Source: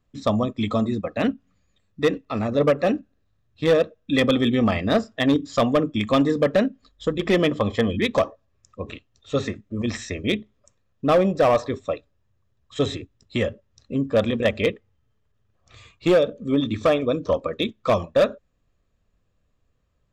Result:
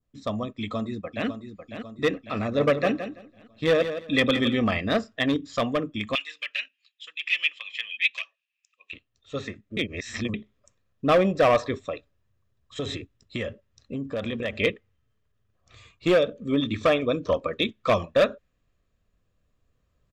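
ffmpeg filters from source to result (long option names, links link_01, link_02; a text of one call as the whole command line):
ffmpeg -i in.wav -filter_complex "[0:a]asplit=2[link_01][link_02];[link_02]afade=type=in:start_time=0.57:duration=0.01,afade=type=out:start_time=1.27:duration=0.01,aecho=0:1:550|1100|1650|2200|2750:0.316228|0.158114|0.0790569|0.0395285|0.0197642[link_03];[link_01][link_03]amix=inputs=2:normalize=0,asettb=1/sr,asplit=3[link_04][link_05][link_06];[link_04]atrim=end=2.404[link_07];[link_05]atrim=start=2.4:end=4.58,asetpts=PTS-STARTPTS,afade=type=in:duration=0.004:curve=qsin,afade=type=out:start_time=2.176:duration=0.004:curve=qsin,aecho=1:1:167|334|501:0.316|0.0632|0.0126,atrim=end_sample=96138[link_08];[link_06]atrim=start=4.576[link_09];[link_07][link_08]acrossfade=duration=0.004:curve1=hsin:curve2=qsin[link_10];[link_10][link_09]acrossfade=duration=0.004:curve1=qsin:curve2=hsin,asettb=1/sr,asplit=3[link_11][link_12][link_13];[link_11]atrim=end=6.154[link_14];[link_12]atrim=start=6.15:end=8.93,asetpts=PTS-STARTPTS,afade=type=in:duration=0.004:curve=qsin,afade=type=out:start_time=2.776:duration=0.004:curve=qsin,highpass=frequency=2600:width_type=q:width=6.8[link_15];[link_13]atrim=start=8.926[link_16];[link_14][link_15]acrossfade=duration=0.004:curve1=hsin:curve2=qsin[link_17];[link_17][link_16]acrossfade=duration=0.004:curve1=qsin:curve2=hsin,asettb=1/sr,asplit=3[link_18][link_19][link_20];[link_18]atrim=end=11.774[link_21];[link_19]atrim=start=11.77:end=14.56,asetpts=PTS-STARTPTS,afade=type=in:duration=0.004:curve=qsin,afade=type=out:start_time=2.786:duration=0.004:curve=qsin,acompressor=threshold=-23dB:ratio=6:attack=3.2:release=140:knee=1:detection=peak[link_22];[link_20]atrim=start=14.556[link_23];[link_21][link_22]acrossfade=duration=0.004:curve1=hsin:curve2=qsin[link_24];[link_24][link_23]acrossfade=duration=0.004:curve1=qsin:curve2=hsin,asplit=3[link_25][link_26][link_27];[link_25]atrim=end=9.772[link_28];[link_26]atrim=start=9.768:end=10.342,asetpts=PTS-STARTPTS,areverse[link_29];[link_27]atrim=start=10.338[link_30];[link_28][link_29]acrossfade=duration=0.004:curve1=hsin:curve2=hsin[link_31];[link_31][link_30]acrossfade=duration=0.004:curve1=hsin:curve2=hsin,bandreject=frequency=860:width=12,adynamicequalizer=threshold=0.0112:dfrequency=2300:dqfactor=0.81:tfrequency=2300:tqfactor=0.81:attack=5:release=100:ratio=0.375:range=3:mode=boostabove:tftype=bell,dynaudnorm=framelen=170:gausssize=21:maxgain=11.5dB,volume=-8.5dB" out.wav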